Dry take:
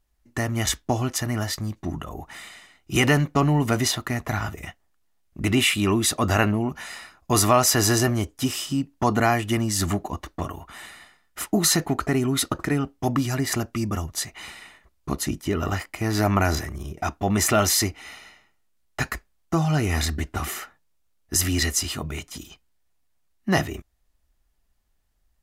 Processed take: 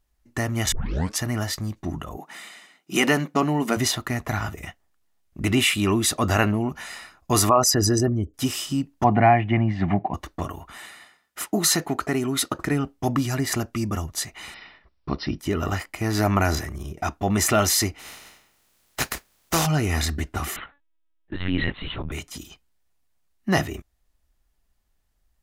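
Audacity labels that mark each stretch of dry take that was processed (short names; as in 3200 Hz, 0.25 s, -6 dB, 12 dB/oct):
0.720000	0.720000	tape start 0.46 s
2.170000	3.770000	brick-wall FIR high-pass 150 Hz
7.490000	8.340000	formant sharpening exponent 2
9.040000	10.140000	speaker cabinet 110–2500 Hz, peaks and dips at 110 Hz +8 dB, 180 Hz +8 dB, 460 Hz -5 dB, 750 Hz +10 dB, 1300 Hz -8 dB, 2200 Hz +6 dB
10.770000	12.590000	HPF 200 Hz 6 dB/oct
14.540000	15.390000	brick-wall FIR low-pass 5800 Hz
17.980000	19.650000	spectral contrast lowered exponent 0.45
20.560000	22.120000	LPC vocoder at 8 kHz pitch kept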